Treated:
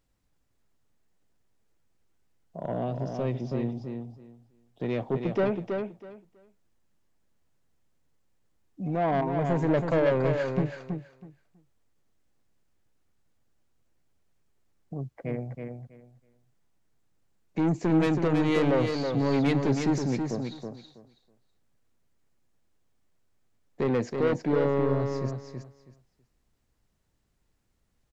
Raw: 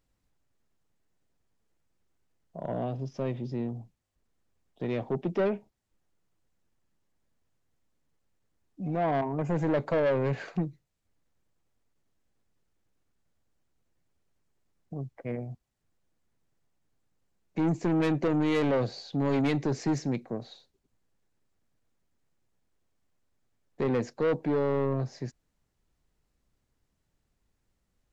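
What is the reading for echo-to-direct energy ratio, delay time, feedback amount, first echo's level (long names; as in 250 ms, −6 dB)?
−5.5 dB, 324 ms, 19%, −5.5 dB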